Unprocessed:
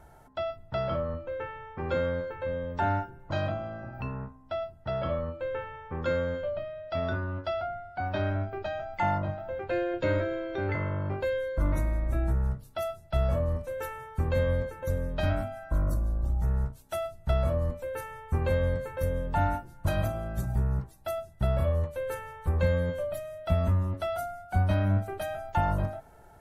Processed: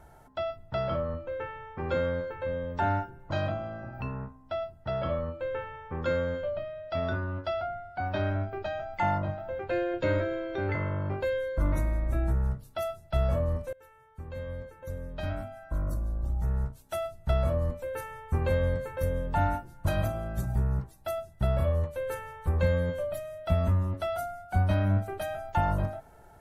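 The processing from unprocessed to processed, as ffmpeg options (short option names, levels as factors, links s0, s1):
-filter_complex "[0:a]asplit=2[s0][s1];[s0]atrim=end=13.73,asetpts=PTS-STARTPTS,afade=t=out:st=13.726:d=0.004:c=hsin:silence=0.0707946[s2];[s1]atrim=start=13.73,asetpts=PTS-STARTPTS,afade=t=in:d=3.34:silence=0.0707946[s3];[s2][s3]concat=n=2:v=0:a=1"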